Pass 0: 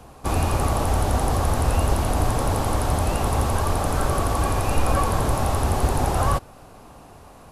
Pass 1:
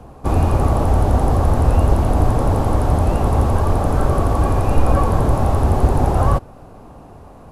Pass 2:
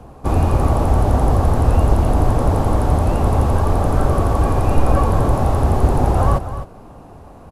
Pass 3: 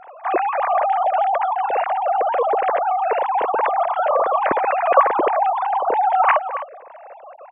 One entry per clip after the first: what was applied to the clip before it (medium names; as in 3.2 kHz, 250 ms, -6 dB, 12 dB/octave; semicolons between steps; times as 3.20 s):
tilt shelf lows +7 dB, about 1.4 kHz
delay 258 ms -11.5 dB
formants replaced by sine waves; trim -4.5 dB